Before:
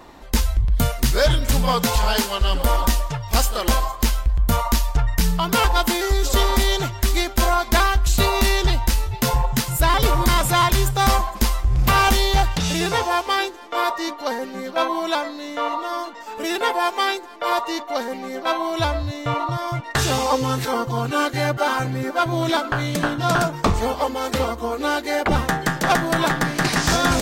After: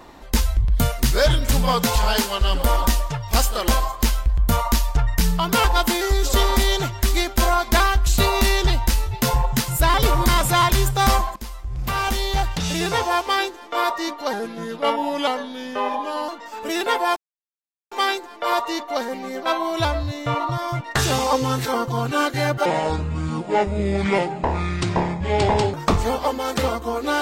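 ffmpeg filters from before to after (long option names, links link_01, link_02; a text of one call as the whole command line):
ffmpeg -i in.wav -filter_complex "[0:a]asplit=7[link_01][link_02][link_03][link_04][link_05][link_06][link_07];[link_01]atrim=end=11.36,asetpts=PTS-STARTPTS,afade=type=out:start_time=11.356:duration=0.004:curve=hsin:silence=0.141254[link_08];[link_02]atrim=start=11.36:end=14.334,asetpts=PTS-STARTPTS,afade=type=in:duration=1.74:silence=0.141254[link_09];[link_03]atrim=start=14.33:end=16.03,asetpts=PTS-STARTPTS,asetrate=38367,aresample=44100,atrim=end_sample=86172,asetpts=PTS-STARTPTS[link_10];[link_04]atrim=start=16.026:end=16.91,asetpts=PTS-STARTPTS,afade=type=out:start_time=0.88:duration=0.004:curve=hsin,apad=pad_dur=0.75[link_11];[link_05]atrim=start=16.91:end=21.654,asetpts=PTS-STARTPTS,afade=type=in:duration=0.004:curve=hsin[link_12];[link_06]atrim=start=21.65:end=23.5,asetpts=PTS-STARTPTS,asetrate=26460,aresample=44100[link_13];[link_07]atrim=start=23.496[link_14];[link_08][link_09]concat=n=2:v=0:a=1[link_15];[link_15][link_10]acrossfade=duration=0.004:curve1=hsin:curve2=hsin[link_16];[link_11][link_12]concat=n=2:v=0:a=1[link_17];[link_16][link_17]acrossfade=duration=0.004:curve1=hsin:curve2=hsin[link_18];[link_18][link_13]acrossfade=duration=0.004:curve1=hsin:curve2=hsin[link_19];[link_19][link_14]acrossfade=duration=0.004:curve1=hsin:curve2=hsin" out.wav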